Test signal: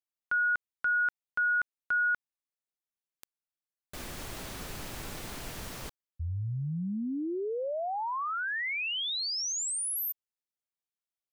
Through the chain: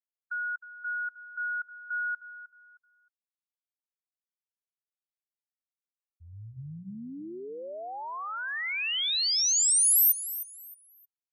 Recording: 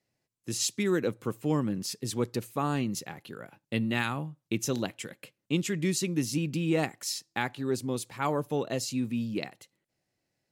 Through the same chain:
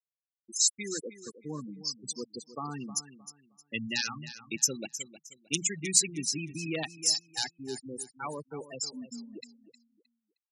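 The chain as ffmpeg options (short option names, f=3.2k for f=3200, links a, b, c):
-af "highpass=f=100:w=0.5412,highpass=f=100:w=1.3066,bandreject=f=60:t=h:w=6,bandreject=f=120:t=h:w=6,bandreject=f=180:t=h:w=6,aeval=exprs='(mod(6.31*val(0)+1,2)-1)/6.31':c=same,tiltshelf=f=1.5k:g=-5.5,dynaudnorm=f=160:g=31:m=4.5dB,afftfilt=real='re*gte(hypot(re,im),0.0891)':imag='im*gte(hypot(re,im),0.0891)':win_size=1024:overlap=0.75,crystalizer=i=2.5:c=0,aecho=1:1:311|622|933:0.2|0.0519|0.0135,volume=-6.5dB"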